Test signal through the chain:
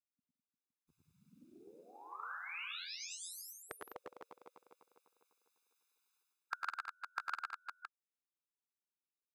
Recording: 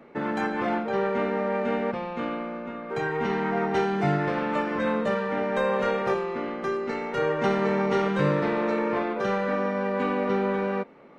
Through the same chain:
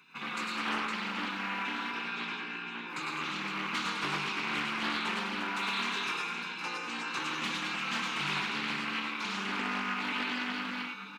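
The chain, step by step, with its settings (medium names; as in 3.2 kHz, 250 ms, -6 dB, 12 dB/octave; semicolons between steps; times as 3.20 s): high-pass 650 Hz 12 dB/octave; spectral gate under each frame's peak -15 dB weak; comb 0.8 ms, depth 95%; in parallel at +1.5 dB: compression, threshold -49 dBFS; on the sum: hard clipper -28 dBFS; on a send: multi-tap echo 101/113/166/205/350/513 ms -5.5/-3.5/-14/-7.5/-8.5/-8.5 dB; on the sum: loudspeaker Doppler distortion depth 0.31 ms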